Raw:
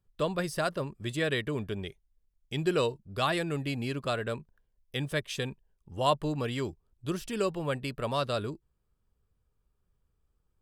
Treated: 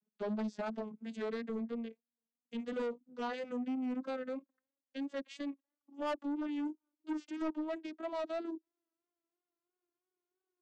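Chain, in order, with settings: vocoder on a gliding note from G#3, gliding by +10 st; vibrato 3 Hz 51 cents; soft clip -29.5 dBFS, distortion -10 dB; gain -2.5 dB

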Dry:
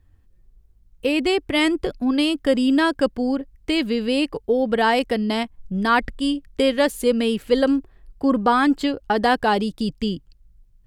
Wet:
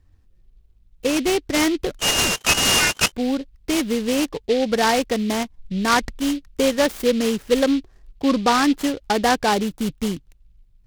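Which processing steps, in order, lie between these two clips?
1.99–3.12 inverted band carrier 3100 Hz; noise-modulated delay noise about 3100 Hz, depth 0.06 ms

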